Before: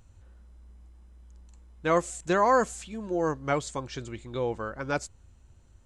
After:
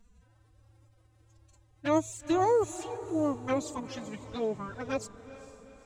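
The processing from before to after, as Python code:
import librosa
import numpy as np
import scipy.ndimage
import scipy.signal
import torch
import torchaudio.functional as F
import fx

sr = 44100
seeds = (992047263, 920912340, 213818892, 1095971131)

y = fx.env_flanger(x, sr, rest_ms=8.6, full_db=-24.5)
y = fx.pitch_keep_formants(y, sr, semitones=10.5)
y = fx.echo_diffused(y, sr, ms=451, feedback_pct=50, wet_db=-14.5)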